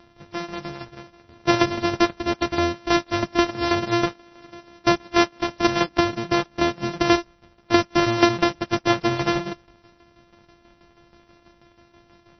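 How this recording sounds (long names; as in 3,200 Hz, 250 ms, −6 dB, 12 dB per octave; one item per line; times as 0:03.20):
a buzz of ramps at a fixed pitch in blocks of 128 samples
tremolo saw down 6.2 Hz, depth 70%
MP3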